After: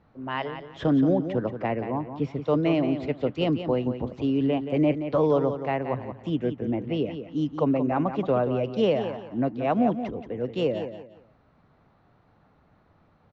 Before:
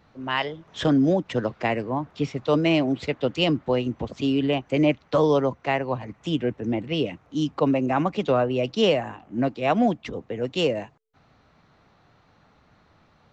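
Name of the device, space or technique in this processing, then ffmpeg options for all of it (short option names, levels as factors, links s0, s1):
through cloth: -filter_complex "[0:a]asettb=1/sr,asplit=3[s0][s1][s2];[s0]atrim=end=1.164[s3];[s1]atrim=start=1.16:end=2.22,asetpts=PTS-STARTPTS,afade=t=in:d=0.004:c=qsin,afade=t=out:st=1.056:d=0.004:c=qsin,highshelf=f=6200:g=-9[s4];[s2]atrim=start=2.216[s5];[s3][s4]acrossfade=d=0.004:c1=hsin:c2=qsin[s6];[s6][s5]acrossfade=d=0.004:c1=qsin:c2=hsin,lowpass=6700,highshelf=f=2200:g=-13.5,aecho=1:1:176|352|528:0.335|0.0938|0.0263,volume=0.841"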